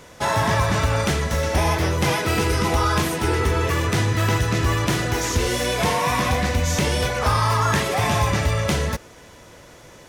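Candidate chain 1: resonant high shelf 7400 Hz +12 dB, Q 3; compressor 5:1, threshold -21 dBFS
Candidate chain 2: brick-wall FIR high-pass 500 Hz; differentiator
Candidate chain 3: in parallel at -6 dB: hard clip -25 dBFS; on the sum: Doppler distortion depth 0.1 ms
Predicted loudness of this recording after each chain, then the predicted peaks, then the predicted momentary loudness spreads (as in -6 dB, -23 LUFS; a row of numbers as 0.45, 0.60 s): -23.5, -31.0, -19.5 LUFS; -5.5, -13.0, -8.5 dBFS; 3, 5, 2 LU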